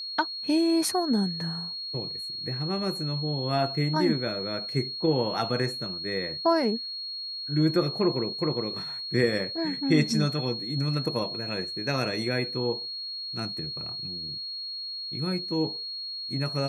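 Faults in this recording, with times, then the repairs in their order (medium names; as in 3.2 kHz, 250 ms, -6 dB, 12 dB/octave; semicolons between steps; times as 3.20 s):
whine 4.3 kHz -33 dBFS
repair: band-stop 4.3 kHz, Q 30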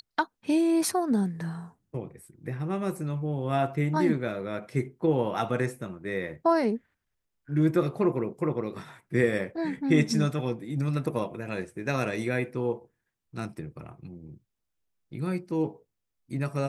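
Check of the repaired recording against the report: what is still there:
nothing left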